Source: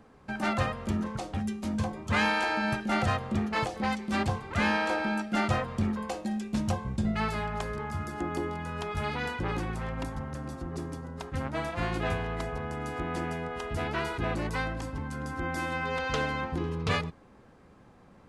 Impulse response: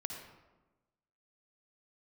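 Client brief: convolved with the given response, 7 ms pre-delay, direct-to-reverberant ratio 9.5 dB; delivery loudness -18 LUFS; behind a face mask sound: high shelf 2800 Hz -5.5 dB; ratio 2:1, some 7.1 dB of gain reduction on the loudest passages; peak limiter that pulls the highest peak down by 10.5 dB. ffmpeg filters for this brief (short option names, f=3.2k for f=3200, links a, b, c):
-filter_complex "[0:a]acompressor=threshold=-36dB:ratio=2,alimiter=level_in=7.5dB:limit=-24dB:level=0:latency=1,volume=-7.5dB,asplit=2[a][b];[1:a]atrim=start_sample=2205,adelay=7[c];[b][c]afir=irnorm=-1:irlink=0,volume=-9dB[d];[a][d]amix=inputs=2:normalize=0,highshelf=f=2.8k:g=-5.5,volume=23.5dB"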